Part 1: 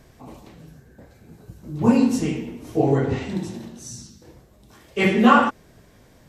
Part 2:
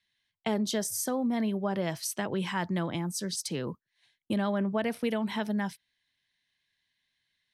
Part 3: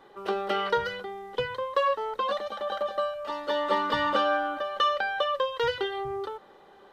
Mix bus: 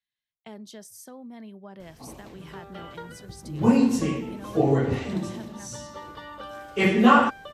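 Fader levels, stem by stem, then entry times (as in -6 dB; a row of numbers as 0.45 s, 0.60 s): -2.0 dB, -13.5 dB, -15.0 dB; 1.80 s, 0.00 s, 2.25 s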